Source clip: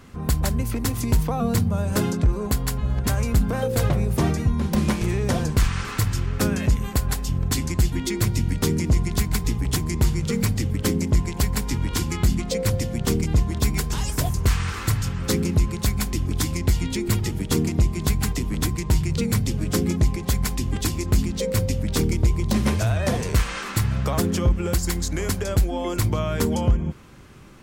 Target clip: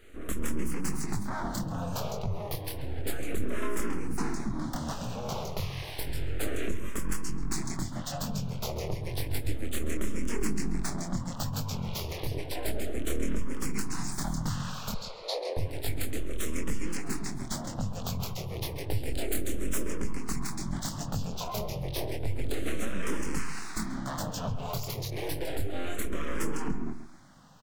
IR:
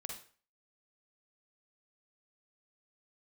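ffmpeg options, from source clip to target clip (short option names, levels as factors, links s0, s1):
-filter_complex "[0:a]asettb=1/sr,asplit=3[s0][s1][s2];[s0]atrim=end=19.004[s3];[s1]atrim=start=19:end=19.86,asetpts=PTS-STARTPTS,afade=t=in:d=0.004:c=qsin,afade=t=out:st=0.856:d=0.004:c=qsin,highshelf=f=7100:g=9[s4];[s2]atrim=start=19.856[s5];[s3][s4]acrossfade=d=0.004:c1=hsin:c2=qsin[s6];[s6][s5]acrossfade=d=0.004:c1=qsin:c2=hsin,acompressor=threshold=0.112:ratio=6,flanger=delay=19.5:depth=7.2:speed=0.95,aeval=exprs='abs(val(0))':c=same,asettb=1/sr,asplit=3[s7][s8][s9];[s7]atrim=end=14.944[s10];[s8]atrim=start=14.94:end=15.57,asetpts=PTS-STARTPTS,afade=t=in:d=0.004:c=qsin,afade=t=out:st=0.626:d=0.004:c=qsin,highpass=f=420:w=0.5412,highpass=f=420:w=1.3066,equalizer=f=510:t=q:w=4:g=7,equalizer=f=2900:t=q:w=4:g=-6,equalizer=f=4200:t=q:w=4:g=9,equalizer=f=6000:t=q:w=4:g=-6,lowpass=f=9000:w=0.5412,lowpass=f=9000:w=1.3066[s11];[s9]atrim=start=15.566[s12];[s10][s11]acrossfade=d=0.004:c1=hsin:c2=qsin[s13];[s13][s12]acrossfade=d=0.004:c1=qsin:c2=hsin,asplit=2[s14][s15];[s15]adelay=135,lowpass=f=2700:p=1,volume=0.282,asplit=2[s16][s17];[s17]adelay=135,lowpass=f=2700:p=1,volume=0.24,asplit=2[s18][s19];[s19]adelay=135,lowpass=f=2700:p=1,volume=0.24[s20];[s14][s16][s18][s20]amix=inputs=4:normalize=0,asplit=2[s21][s22];[s22]afreqshift=-0.31[s23];[s21][s23]amix=inputs=2:normalize=1"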